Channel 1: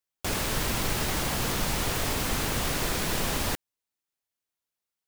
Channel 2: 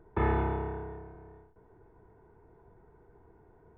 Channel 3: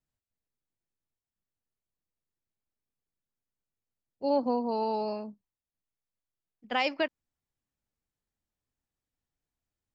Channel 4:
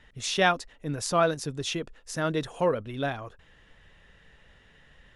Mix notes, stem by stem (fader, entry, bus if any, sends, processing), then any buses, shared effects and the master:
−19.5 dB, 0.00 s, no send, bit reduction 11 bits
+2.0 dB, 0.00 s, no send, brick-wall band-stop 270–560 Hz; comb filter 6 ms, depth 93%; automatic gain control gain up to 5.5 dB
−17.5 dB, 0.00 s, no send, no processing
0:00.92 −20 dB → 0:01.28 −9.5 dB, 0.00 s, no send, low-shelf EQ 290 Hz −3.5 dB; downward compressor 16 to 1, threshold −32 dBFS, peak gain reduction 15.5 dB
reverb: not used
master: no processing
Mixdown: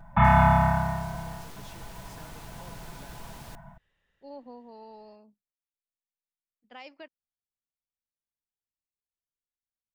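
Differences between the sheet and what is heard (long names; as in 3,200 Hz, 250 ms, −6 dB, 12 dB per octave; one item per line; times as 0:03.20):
stem 2 +2.0 dB → +9.0 dB
stem 4 −20.0 dB → −28.5 dB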